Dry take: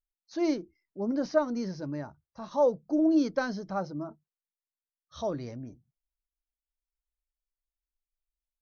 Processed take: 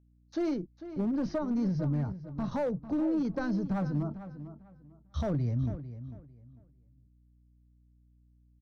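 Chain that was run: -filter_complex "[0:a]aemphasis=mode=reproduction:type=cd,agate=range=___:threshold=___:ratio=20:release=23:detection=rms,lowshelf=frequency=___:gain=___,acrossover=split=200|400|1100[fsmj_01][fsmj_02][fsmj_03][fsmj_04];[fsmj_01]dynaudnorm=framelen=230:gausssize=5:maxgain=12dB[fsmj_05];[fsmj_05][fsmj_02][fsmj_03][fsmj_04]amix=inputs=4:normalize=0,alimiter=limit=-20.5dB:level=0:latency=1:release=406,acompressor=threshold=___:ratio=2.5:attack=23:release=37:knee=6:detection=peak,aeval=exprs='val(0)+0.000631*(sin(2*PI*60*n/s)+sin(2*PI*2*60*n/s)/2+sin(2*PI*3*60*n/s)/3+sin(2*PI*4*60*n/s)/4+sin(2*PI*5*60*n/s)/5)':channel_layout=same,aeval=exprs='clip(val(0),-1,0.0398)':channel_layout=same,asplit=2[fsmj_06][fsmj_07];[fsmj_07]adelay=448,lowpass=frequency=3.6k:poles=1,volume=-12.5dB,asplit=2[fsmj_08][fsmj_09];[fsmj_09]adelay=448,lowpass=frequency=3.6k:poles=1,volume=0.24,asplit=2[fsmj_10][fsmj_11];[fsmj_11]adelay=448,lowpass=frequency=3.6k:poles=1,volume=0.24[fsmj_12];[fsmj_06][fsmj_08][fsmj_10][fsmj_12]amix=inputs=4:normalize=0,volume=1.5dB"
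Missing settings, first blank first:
-30dB, -55dB, 130, 11, -32dB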